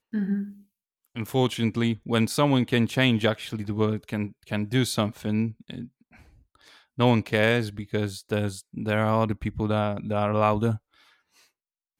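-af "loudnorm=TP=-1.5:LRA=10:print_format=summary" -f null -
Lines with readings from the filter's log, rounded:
Input Integrated:    -25.7 LUFS
Input True Peak:      -7.9 dBTP
Input LRA:             2.8 LU
Input Threshold:     -36.8 LUFS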